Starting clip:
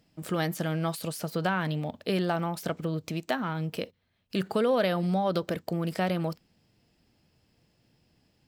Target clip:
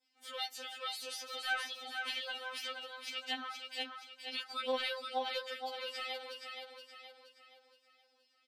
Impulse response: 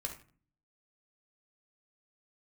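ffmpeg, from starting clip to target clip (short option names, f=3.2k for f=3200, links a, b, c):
-af "bandpass=f=3.5k:t=q:w=0.82:csg=0,aecho=1:1:472|944|1416|1888|2360|2832:0.531|0.244|0.112|0.0517|0.0238|0.0109,adynamicequalizer=threshold=0.00224:dfrequency=3400:dqfactor=0.84:tfrequency=3400:tqfactor=0.84:attack=5:release=100:ratio=0.375:range=2:mode=boostabove:tftype=bell,asoftclip=type=tanh:threshold=-18.5dB,afftfilt=real='re*3.46*eq(mod(b,12),0)':imag='im*3.46*eq(mod(b,12),0)':win_size=2048:overlap=0.75"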